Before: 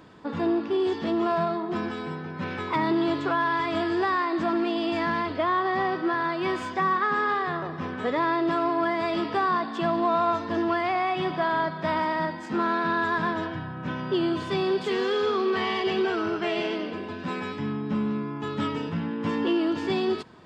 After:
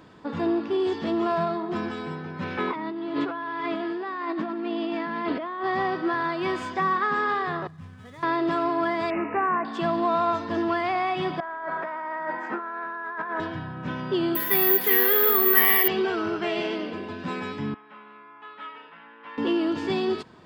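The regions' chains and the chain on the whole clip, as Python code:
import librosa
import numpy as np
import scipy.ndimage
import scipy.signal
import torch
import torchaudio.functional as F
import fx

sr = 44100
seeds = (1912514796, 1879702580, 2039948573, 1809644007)

y = fx.chain(x, sr, fx.lowpass(hz=3600.0, slope=12),
    fx.over_compress(threshold_db=-31.0, ratio=-1.0),
    fx.low_shelf_res(hz=150.0, db=-12.5, q=1.5), at=(2.57, 5.64))
y = fx.chain(y, sr, fx.median_filter(points=9),
    fx.curve_eq(hz=(120.0, 350.0, 4900.0), db=(0, -25, -10)), at=(7.67, 8.23))
y = fx.chain(y, sr, fx.peak_eq(hz=130.0, db=-9.5, octaves=0.53),
    fx.resample_bad(factor=8, down='none', up='filtered'), at=(9.1, 9.65))
y = fx.chain(y, sr, fx.bandpass_edges(low_hz=450.0, high_hz=5900.0),
    fx.high_shelf_res(hz=2600.0, db=-13.5, q=1.5),
    fx.over_compress(threshold_db=-32.0, ratio=-1.0), at=(11.4, 13.4))
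y = fx.chain(y, sr, fx.highpass(hz=220.0, slope=12),
    fx.peak_eq(hz=1900.0, db=13.0, octaves=0.35),
    fx.resample_bad(factor=3, down='none', up='zero_stuff'), at=(14.35, 15.88))
y = fx.chain(y, sr, fx.highpass(hz=1200.0, slope=12),
    fx.air_absorb(metres=490.0), at=(17.74, 19.38))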